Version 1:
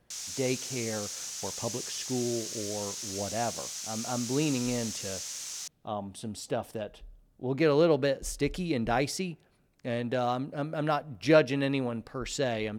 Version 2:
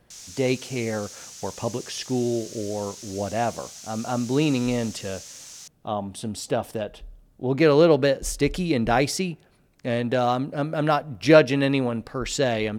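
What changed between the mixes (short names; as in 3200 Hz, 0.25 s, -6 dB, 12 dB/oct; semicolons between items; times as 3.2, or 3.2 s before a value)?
speech +7.0 dB; background -3.5 dB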